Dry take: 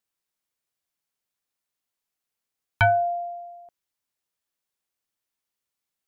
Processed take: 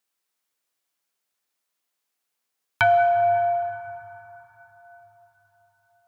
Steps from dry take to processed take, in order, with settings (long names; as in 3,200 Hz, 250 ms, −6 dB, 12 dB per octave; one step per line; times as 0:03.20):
high-pass filter 330 Hz 6 dB per octave
in parallel at −2.5 dB: downward compressor, threshold −35 dBFS, peak gain reduction 17.5 dB
on the sum: dense smooth reverb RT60 4.6 s, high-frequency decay 0.4×, DRR 5 dB